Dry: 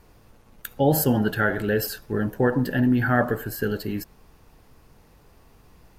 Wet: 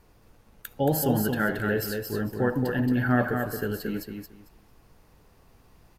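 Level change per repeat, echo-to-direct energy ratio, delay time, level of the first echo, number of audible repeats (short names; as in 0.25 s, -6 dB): -14.0 dB, -5.0 dB, 0.225 s, -5.0 dB, 3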